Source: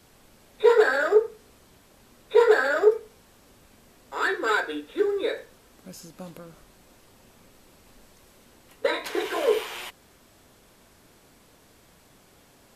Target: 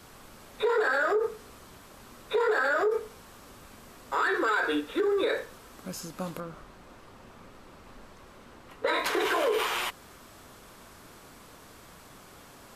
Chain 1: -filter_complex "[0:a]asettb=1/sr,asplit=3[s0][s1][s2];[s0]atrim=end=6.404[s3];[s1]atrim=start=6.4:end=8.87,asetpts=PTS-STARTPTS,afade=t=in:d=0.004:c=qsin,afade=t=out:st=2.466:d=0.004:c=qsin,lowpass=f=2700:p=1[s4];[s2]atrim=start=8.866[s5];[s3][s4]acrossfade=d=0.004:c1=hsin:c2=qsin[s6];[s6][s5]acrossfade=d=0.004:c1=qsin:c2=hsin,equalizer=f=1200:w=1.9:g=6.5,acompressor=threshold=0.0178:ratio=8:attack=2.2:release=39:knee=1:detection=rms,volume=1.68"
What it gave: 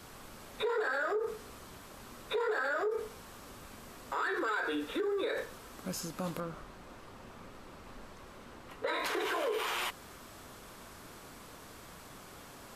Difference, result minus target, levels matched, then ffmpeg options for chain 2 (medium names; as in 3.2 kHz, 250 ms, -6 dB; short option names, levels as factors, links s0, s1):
compression: peak gain reduction +7 dB
-filter_complex "[0:a]asettb=1/sr,asplit=3[s0][s1][s2];[s0]atrim=end=6.404[s3];[s1]atrim=start=6.4:end=8.87,asetpts=PTS-STARTPTS,afade=t=in:d=0.004:c=qsin,afade=t=out:st=2.466:d=0.004:c=qsin,lowpass=f=2700:p=1[s4];[s2]atrim=start=8.866[s5];[s3][s4]acrossfade=d=0.004:c1=hsin:c2=qsin[s6];[s6][s5]acrossfade=d=0.004:c1=qsin:c2=hsin,equalizer=f=1200:w=1.9:g=6.5,acompressor=threshold=0.0447:ratio=8:attack=2.2:release=39:knee=1:detection=rms,volume=1.68"